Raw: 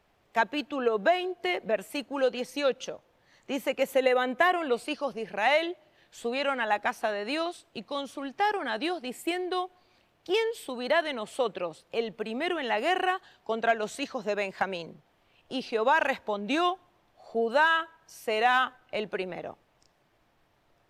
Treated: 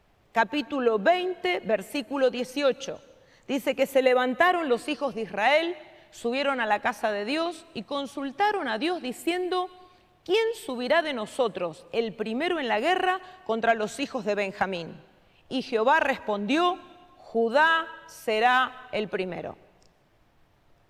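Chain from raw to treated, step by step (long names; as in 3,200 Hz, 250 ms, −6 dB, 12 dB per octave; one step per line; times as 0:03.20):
low-shelf EQ 180 Hz +8 dB
on a send: convolution reverb RT60 1.3 s, pre-delay 118 ms, DRR 22 dB
on the sum: level +2 dB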